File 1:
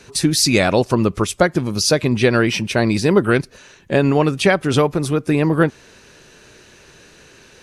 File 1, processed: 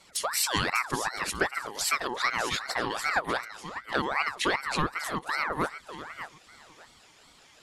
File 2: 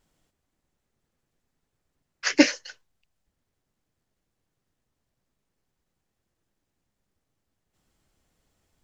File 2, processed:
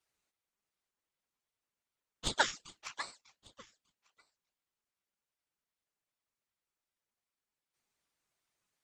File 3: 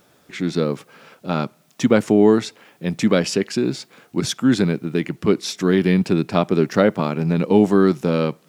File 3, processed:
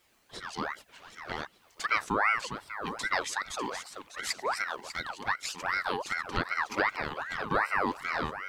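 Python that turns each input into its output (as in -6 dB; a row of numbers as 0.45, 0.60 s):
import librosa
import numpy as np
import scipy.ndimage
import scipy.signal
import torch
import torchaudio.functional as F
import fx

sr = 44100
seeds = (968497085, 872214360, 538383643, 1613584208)

y = fx.highpass(x, sr, hz=780.0, slope=6)
y = fx.notch(y, sr, hz=4300.0, q=12.0)
y = fx.env_flanger(y, sr, rest_ms=4.9, full_db=-22.0)
y = fx.echo_feedback(y, sr, ms=597, feedback_pct=20, wet_db=-11.0)
y = fx.ring_lfo(y, sr, carrier_hz=1200.0, swing_pct=50, hz=2.6)
y = y * 10.0 ** (-2.5 / 20.0)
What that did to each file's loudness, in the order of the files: -12.0, -14.0, -12.5 LU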